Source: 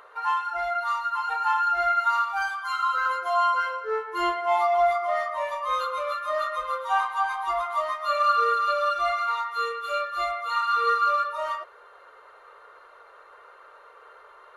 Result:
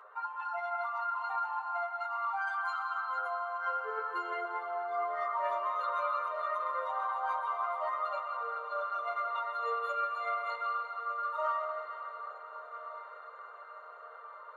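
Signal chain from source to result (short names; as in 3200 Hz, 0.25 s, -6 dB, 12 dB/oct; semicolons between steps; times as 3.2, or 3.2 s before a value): formant sharpening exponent 1.5; HPF 390 Hz 12 dB/oct; limiter -19.5 dBFS, peak gain reduction 8 dB; negative-ratio compressor -29 dBFS, ratio -0.5; flange 0.15 Hz, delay 9.4 ms, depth 6.4 ms, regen +34%; diffused feedback echo 1.417 s, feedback 63%, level -15 dB; reverb RT60 3.9 s, pre-delay 0.119 s, DRR 4 dB; gain -2.5 dB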